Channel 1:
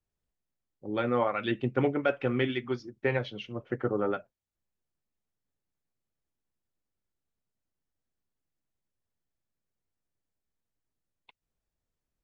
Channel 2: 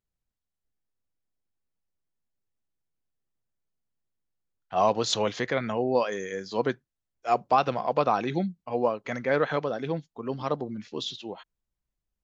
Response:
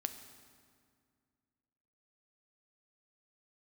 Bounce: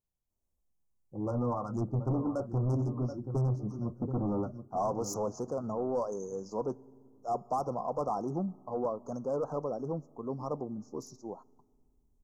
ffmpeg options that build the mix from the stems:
-filter_complex "[0:a]asubboost=boost=7.5:cutoff=200,flanger=delay=3.3:depth=7.3:regen=-45:speed=0.24:shape=sinusoidal,adelay=300,volume=1.33,asplit=3[s0][s1][s2];[s1]volume=0.106[s3];[s2]volume=0.237[s4];[1:a]volume=0.596,asplit=2[s5][s6];[s6]volume=0.178[s7];[2:a]atrim=start_sample=2205[s8];[s3][s7]amix=inputs=2:normalize=0[s9];[s9][s8]afir=irnorm=-1:irlink=0[s10];[s4]aecho=0:1:729|1458|2187|2916|3645:1|0.32|0.102|0.0328|0.0105[s11];[s0][s5][s10][s11]amix=inputs=4:normalize=0,asoftclip=type=tanh:threshold=0.0501,asuperstop=centerf=2600:order=12:qfactor=0.59"

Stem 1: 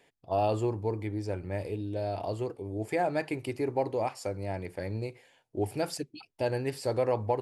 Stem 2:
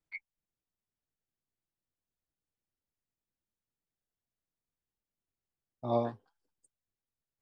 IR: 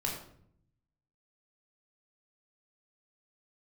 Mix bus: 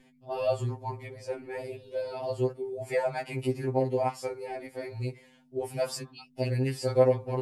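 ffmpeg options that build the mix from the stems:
-filter_complex "[0:a]aeval=exprs='val(0)+0.002*(sin(2*PI*50*n/s)+sin(2*PI*2*50*n/s)/2+sin(2*PI*3*50*n/s)/3+sin(2*PI*4*50*n/s)/4+sin(2*PI*5*50*n/s)/5)':c=same,acontrast=78,volume=0.668,asplit=2[s0][s1];[1:a]highpass=f=190:w=0.5412,highpass=f=190:w=1.3066,acompressor=threshold=0.0251:ratio=6,volume=0.501[s2];[s1]apad=whole_len=327097[s3];[s2][s3]sidechaingate=range=0.0224:threshold=0.00794:ratio=16:detection=peak[s4];[s0][s4]amix=inputs=2:normalize=0,afftfilt=real='re*2.45*eq(mod(b,6),0)':imag='im*2.45*eq(mod(b,6),0)':win_size=2048:overlap=0.75"

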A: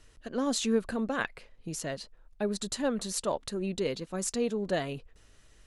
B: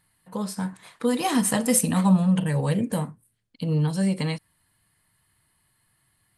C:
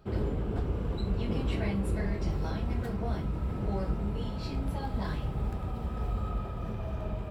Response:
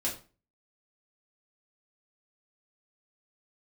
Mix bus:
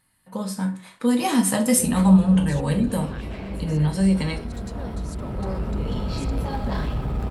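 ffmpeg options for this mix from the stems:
-filter_complex "[0:a]adelay=1950,volume=0.251[s0];[1:a]volume=0.668,asplit=3[s1][s2][s3];[s2]volume=0.596[s4];[2:a]aeval=exprs='0.119*(cos(1*acos(clip(val(0)/0.119,-1,1)))-cos(1*PI/2))+0.0335*(cos(5*acos(clip(val(0)/0.119,-1,1)))-cos(5*PI/2))':c=same,adelay=1700,volume=1,asplit=3[s5][s6][s7];[s6]volume=0.133[s8];[s7]volume=0.251[s9];[s3]apad=whole_len=397218[s10];[s5][s10]sidechaincompress=threshold=0.00794:ratio=8:attack=16:release=1260[s11];[3:a]atrim=start_sample=2205[s12];[s4][s8]amix=inputs=2:normalize=0[s13];[s13][s12]afir=irnorm=-1:irlink=0[s14];[s9]aecho=0:1:122|244|366|488|610|732|854|976|1098:1|0.58|0.336|0.195|0.113|0.0656|0.0381|0.0221|0.0128[s15];[s0][s1][s11][s14][s15]amix=inputs=5:normalize=0"

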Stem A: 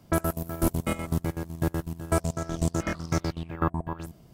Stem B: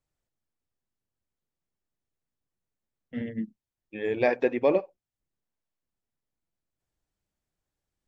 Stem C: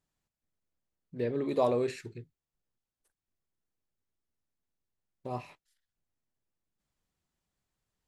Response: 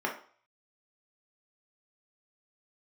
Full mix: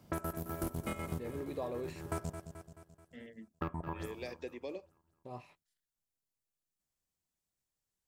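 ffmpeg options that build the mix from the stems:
-filter_complex "[0:a]highpass=41,asoftclip=type=tanh:threshold=0.133,volume=0.562,asplit=3[s0][s1][s2];[s0]atrim=end=2.3,asetpts=PTS-STARTPTS,afade=t=out:st=2.296:d=0.004:c=hsin[s3];[s1]atrim=start=2.3:end=3.61,asetpts=PTS-STARTPTS,volume=0[s4];[s2]atrim=start=3.61,asetpts=PTS-STARTPTS,afade=t=in:d=0.004:c=hsin[s5];[s3][s4][s5]concat=n=3:v=0:a=1,asplit=3[s6][s7][s8];[s7]volume=0.0944[s9];[s8]volume=0.2[s10];[1:a]acrossover=split=400|3000[s11][s12][s13];[s12]acompressor=threshold=0.0158:ratio=6[s14];[s11][s14][s13]amix=inputs=3:normalize=0,bass=f=250:g=-13,treble=f=4000:g=14,volume=0.251[s15];[2:a]volume=0.335,asplit=2[s16][s17];[s17]apad=whole_len=191060[s18];[s6][s18]sidechaincompress=threshold=0.00355:ratio=8:attack=16:release=283[s19];[3:a]atrim=start_sample=2205[s20];[s9][s20]afir=irnorm=-1:irlink=0[s21];[s10]aecho=0:1:216|432|648|864|1080|1296|1512:1|0.51|0.26|0.133|0.0677|0.0345|0.0176[s22];[s19][s15][s16][s21][s22]amix=inputs=5:normalize=0,acompressor=threshold=0.02:ratio=6"

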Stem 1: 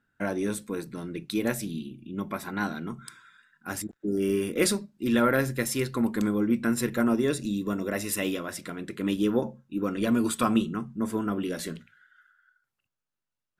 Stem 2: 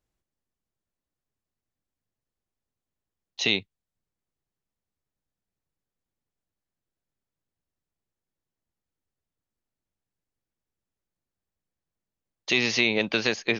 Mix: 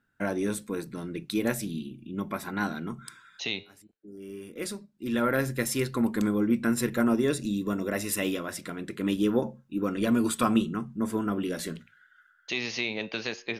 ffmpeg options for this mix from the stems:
-filter_complex "[0:a]volume=1[s0];[1:a]agate=range=0.0224:threshold=0.0126:ratio=3:detection=peak,flanger=delay=9.5:depth=4.5:regen=-85:speed=0.22:shape=sinusoidal,volume=0.668,asplit=2[s1][s2];[s2]apad=whole_len=599743[s3];[s0][s3]sidechaincompress=threshold=0.00224:ratio=6:attack=23:release=1130[s4];[s4][s1]amix=inputs=2:normalize=0"

